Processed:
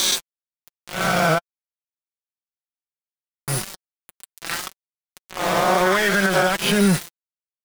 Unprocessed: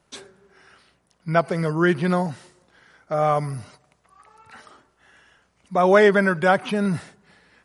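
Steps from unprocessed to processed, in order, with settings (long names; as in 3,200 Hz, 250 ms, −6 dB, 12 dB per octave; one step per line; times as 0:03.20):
peak hold with a rise ahead of every peak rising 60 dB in 0.92 s
high-shelf EQ 2,400 Hz +11.5 dB
downward compressor 4 to 1, threshold −31 dBFS, peak gain reduction 20 dB
0:01.38–0:03.48: formant resonators in series i
centre clipping without the shift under −34 dBFS
flanger 1.9 Hz, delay 5.1 ms, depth 1 ms, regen +20%
boost into a limiter +25.5 dB
level −7.5 dB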